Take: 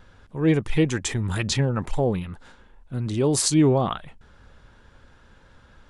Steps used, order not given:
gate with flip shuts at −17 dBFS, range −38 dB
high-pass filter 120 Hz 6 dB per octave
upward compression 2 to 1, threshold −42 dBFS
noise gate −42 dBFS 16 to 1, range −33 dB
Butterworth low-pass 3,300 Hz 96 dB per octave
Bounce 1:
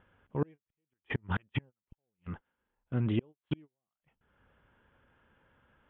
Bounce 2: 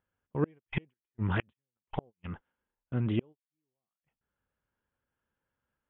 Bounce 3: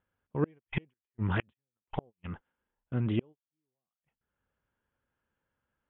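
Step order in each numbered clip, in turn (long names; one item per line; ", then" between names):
Butterworth low-pass, then gate with flip, then high-pass filter, then noise gate, then upward compression
upward compression, then high-pass filter, then gate with flip, then Butterworth low-pass, then noise gate
high-pass filter, then upward compression, then gate with flip, then noise gate, then Butterworth low-pass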